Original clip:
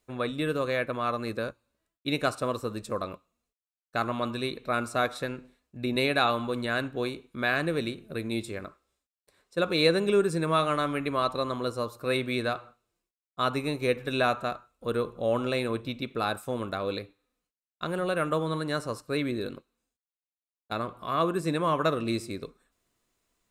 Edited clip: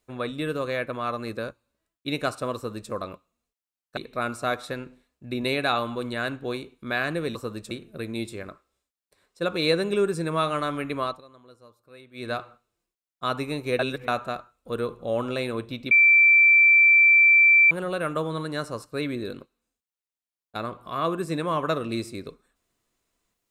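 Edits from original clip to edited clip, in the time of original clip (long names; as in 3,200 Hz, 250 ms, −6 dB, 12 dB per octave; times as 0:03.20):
0:02.55–0:02.91: duplicate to 0:07.87
0:03.97–0:04.49: remove
0:11.18–0:12.49: duck −21 dB, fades 0.20 s
0:13.95–0:14.24: reverse
0:16.07–0:17.87: beep over 2,340 Hz −12.5 dBFS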